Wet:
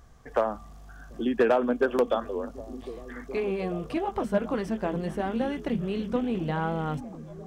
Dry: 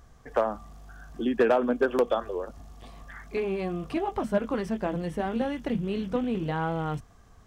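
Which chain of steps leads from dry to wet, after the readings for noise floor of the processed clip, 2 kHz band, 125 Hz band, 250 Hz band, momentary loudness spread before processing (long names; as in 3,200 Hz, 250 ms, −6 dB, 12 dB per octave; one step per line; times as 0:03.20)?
−47 dBFS, 0.0 dB, +0.5 dB, +0.5 dB, 17 LU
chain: echo through a band-pass that steps 737 ms, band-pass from 200 Hz, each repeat 0.7 octaves, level −11 dB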